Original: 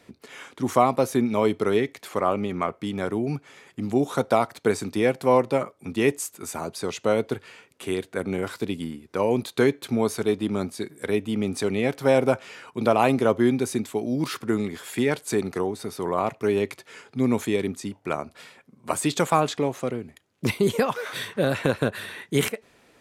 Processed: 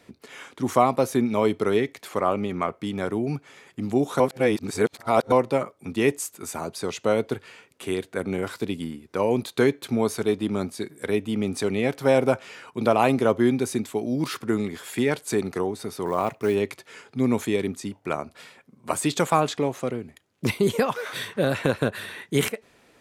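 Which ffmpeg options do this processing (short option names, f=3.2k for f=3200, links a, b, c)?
-filter_complex "[0:a]asettb=1/sr,asplit=3[a][b][c];[a]atrim=end=16.064[d];[b]atrim=start=16.06:end=16.55,asetpts=PTS-STARTPTS,afade=t=in:d=0.004:c=qsin,afade=t=out:st=0.486:d=0.004:c=qsin,acrusher=bits=7:mode=log:mix=0:aa=0.000001[e];[c]atrim=start=16.546[f];[d][e]acrossfade=d=0.004:c1=hsin:c2=qsin[g];[g][f]acrossfade=d=0.004:c1=qsin:c2=hsin,asplit=3[h][i][j];[h]atrim=end=4.202[k];[i]atrim=start=4.198:end=5.322,asetpts=PTS-STARTPTS,areverse[l];[j]atrim=start=5.318[m];[k][l]acrossfade=d=0.004:c1=hsin:c2=hsin[n];[n][m]acrossfade=d=0.004:c1=hsin:c2=hsin"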